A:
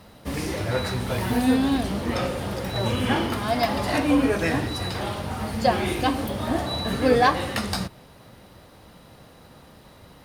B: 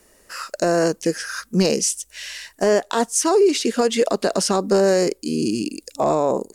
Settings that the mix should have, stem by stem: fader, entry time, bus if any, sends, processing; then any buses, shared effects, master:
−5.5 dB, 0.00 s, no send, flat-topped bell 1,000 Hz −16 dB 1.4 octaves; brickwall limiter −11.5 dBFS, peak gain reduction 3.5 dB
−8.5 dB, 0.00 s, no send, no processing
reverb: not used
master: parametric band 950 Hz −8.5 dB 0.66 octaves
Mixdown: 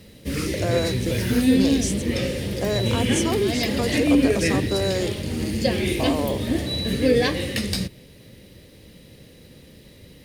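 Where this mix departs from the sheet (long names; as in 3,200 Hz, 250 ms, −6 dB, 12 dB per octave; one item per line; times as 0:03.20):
stem A −5.5 dB → +3.0 dB
master: missing parametric band 950 Hz −8.5 dB 0.66 octaves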